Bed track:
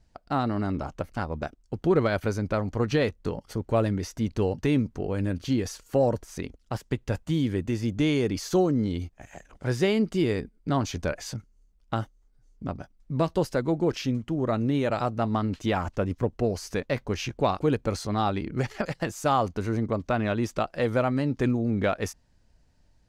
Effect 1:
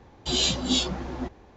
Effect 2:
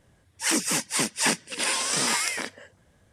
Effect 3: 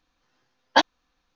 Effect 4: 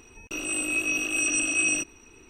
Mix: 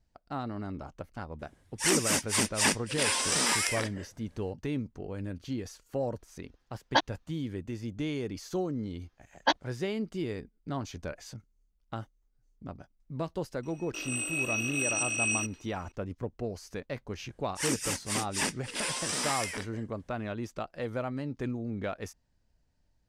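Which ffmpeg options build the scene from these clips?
-filter_complex "[2:a]asplit=2[a][b];[3:a]asplit=2[c][d];[0:a]volume=-9.5dB[e];[4:a]lowshelf=f=280:g=-10.5[f];[a]atrim=end=3.12,asetpts=PTS-STARTPTS,volume=-2.5dB,afade=t=in:d=0.004:c=hsin,afade=t=out:st=3.116:d=0.004:c=hsin,adelay=1390[g];[c]atrim=end=1.35,asetpts=PTS-STARTPTS,volume=-7dB,afade=t=in:d=0.004:c=hsin,afade=t=out:st=1.346:d=0.004:c=hsin,adelay=6190[h];[d]atrim=end=1.35,asetpts=PTS-STARTPTS,volume=-7.5dB,afade=t=in:d=0.004:c=hsin,afade=t=out:st=1.346:d=0.004:c=hsin,adelay=8710[i];[f]atrim=end=2.29,asetpts=PTS-STARTPTS,volume=-5dB,afade=t=in:d=0.004:c=hsin,afade=t=out:st=2.286:d=0.004:c=hsin,adelay=13630[j];[b]atrim=end=3.12,asetpts=PTS-STARTPTS,volume=-7.5dB,afade=t=in:d=0.004:c=hsin,afade=t=out:st=3.116:d=0.004:c=hsin,adelay=756756S[k];[e][g][h][i][j][k]amix=inputs=6:normalize=0"

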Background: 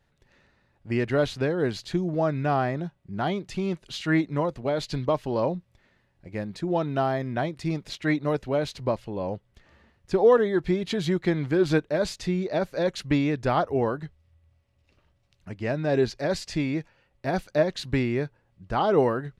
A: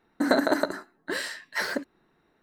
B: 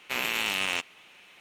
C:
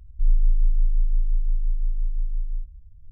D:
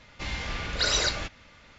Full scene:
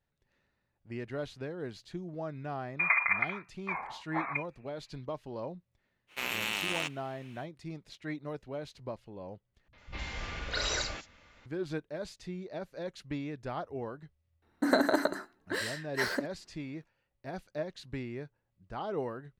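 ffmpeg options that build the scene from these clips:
-filter_complex "[1:a]asplit=2[a][b];[0:a]volume=-14dB[c];[a]lowpass=f=2.3k:t=q:w=0.5098,lowpass=f=2.3k:t=q:w=0.6013,lowpass=f=2.3k:t=q:w=0.9,lowpass=f=2.3k:t=q:w=2.563,afreqshift=-2700[d];[4:a]acrossover=split=160|4500[e][f][g];[f]adelay=50[h];[g]adelay=100[i];[e][h][i]amix=inputs=3:normalize=0[j];[c]asplit=2[k][l];[k]atrim=end=9.684[m];[j]atrim=end=1.78,asetpts=PTS-STARTPTS,volume=-5.5dB[n];[l]atrim=start=11.456[o];[d]atrim=end=2.42,asetpts=PTS-STARTPTS,volume=-5dB,afade=t=in:d=0.004:c=hsin,afade=t=out:st=2.416:d=0.004:c=hsin,adelay=2590[p];[2:a]atrim=end=1.4,asetpts=PTS-STARTPTS,volume=-5dB,afade=t=in:d=0.05,afade=t=out:st=1.35:d=0.05,adelay=6070[q];[b]atrim=end=2.42,asetpts=PTS-STARTPTS,volume=-3.5dB,afade=t=in:d=0.004:c=hsin,afade=t=out:st=2.416:d=0.004:c=hsin,adelay=14420[r];[m][n]acrossfade=d=0.004:c1=hsin:c2=hsin[s];[s][o]acrossfade=d=0.004:c1=hsin:c2=hsin[t];[t][p][q][r]amix=inputs=4:normalize=0"

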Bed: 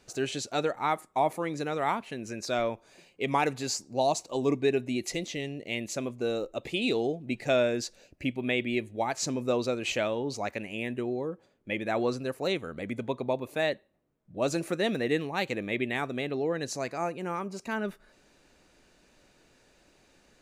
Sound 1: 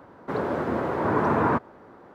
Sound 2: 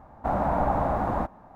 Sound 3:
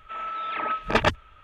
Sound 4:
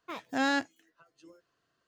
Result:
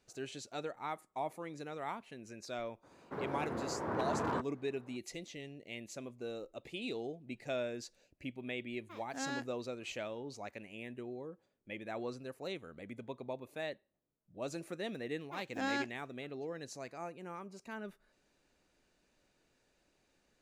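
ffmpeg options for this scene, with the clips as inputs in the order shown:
-filter_complex "[4:a]asplit=2[a][b];[0:a]volume=-12.5dB[c];[1:a]aeval=exprs='0.188*(abs(mod(val(0)/0.188+3,4)-2)-1)':c=same,atrim=end=2.14,asetpts=PTS-STARTPTS,volume=-13dB,afade=t=in:d=0.004:c=hsin,afade=t=out:st=2.136:d=0.004:c=hsin,adelay=2830[d];[a]atrim=end=1.87,asetpts=PTS-STARTPTS,volume=-12.5dB,afade=t=in:d=0.004:c=hsin,afade=t=out:st=1.866:d=0.004:c=hsin,adelay=8810[e];[b]atrim=end=1.87,asetpts=PTS-STARTPTS,volume=-8dB,afade=t=in:d=0.004:c=hsin,afade=t=out:st=1.866:d=0.004:c=hsin,adelay=15230[f];[c][d][e][f]amix=inputs=4:normalize=0"

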